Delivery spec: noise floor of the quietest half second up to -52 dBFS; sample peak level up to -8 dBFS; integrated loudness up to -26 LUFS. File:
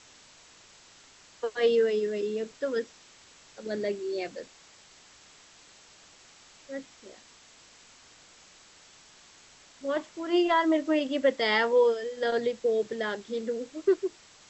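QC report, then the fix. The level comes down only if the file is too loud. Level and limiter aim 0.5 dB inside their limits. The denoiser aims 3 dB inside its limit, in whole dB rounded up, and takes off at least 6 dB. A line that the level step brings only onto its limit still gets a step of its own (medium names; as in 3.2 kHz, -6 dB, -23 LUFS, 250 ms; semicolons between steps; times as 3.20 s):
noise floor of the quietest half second -55 dBFS: pass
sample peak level -11.5 dBFS: pass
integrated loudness -28.0 LUFS: pass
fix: none needed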